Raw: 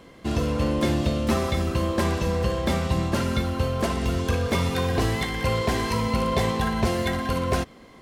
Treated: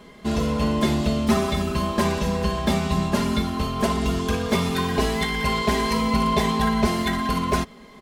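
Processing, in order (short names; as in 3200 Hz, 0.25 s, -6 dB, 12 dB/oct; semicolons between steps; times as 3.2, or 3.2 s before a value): comb 4.8 ms, depth 89%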